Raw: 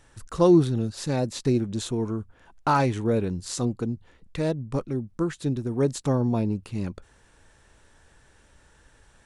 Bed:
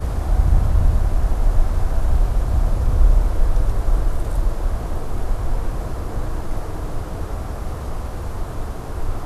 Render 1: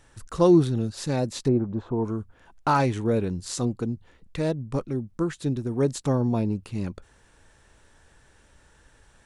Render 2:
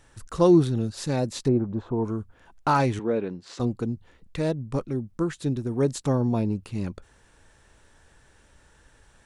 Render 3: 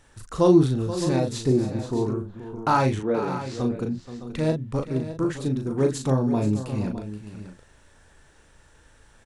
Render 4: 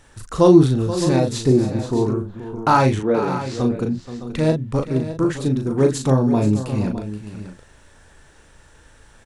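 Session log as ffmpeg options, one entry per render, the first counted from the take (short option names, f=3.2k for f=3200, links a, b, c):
-filter_complex "[0:a]asplit=3[a][b][c];[a]afade=t=out:st=1.47:d=0.02[d];[b]lowpass=f=1k:t=q:w=2,afade=t=in:st=1.47:d=0.02,afade=t=out:st=2.03:d=0.02[e];[c]afade=t=in:st=2.03:d=0.02[f];[d][e][f]amix=inputs=3:normalize=0"
-filter_complex "[0:a]asettb=1/sr,asplit=3[a][b][c];[a]atrim=end=2.994[d];[b]atrim=start=2.99:end=3.6,asetpts=PTS-STARTPTS,afade=t=in:d=0.004:c=qsin,afade=t=out:st=0.606:d=0.004:c=qsin,highpass=240,lowpass=3k[e];[c]atrim=start=3.596[f];[d][e]acrossfade=d=0.004:c1=hsin:c2=qsin[g];[g][f]acrossfade=d=0.004:c1=qsin:c2=hsin"
-filter_complex "[0:a]asplit=2[a][b];[b]adelay=38,volume=-5dB[c];[a][c]amix=inputs=2:normalize=0,aecho=1:1:478|612:0.224|0.237"
-af "volume=5.5dB,alimiter=limit=-1dB:level=0:latency=1"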